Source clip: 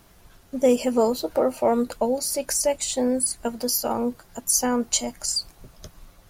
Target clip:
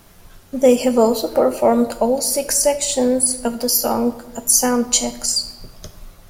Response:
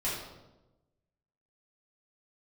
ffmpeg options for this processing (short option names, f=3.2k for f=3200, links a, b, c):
-filter_complex "[0:a]asplit=2[a][b];[1:a]atrim=start_sample=2205,highshelf=f=5.3k:g=10.5[c];[b][c]afir=irnorm=-1:irlink=0,volume=-16.5dB[d];[a][d]amix=inputs=2:normalize=0,volume=5dB"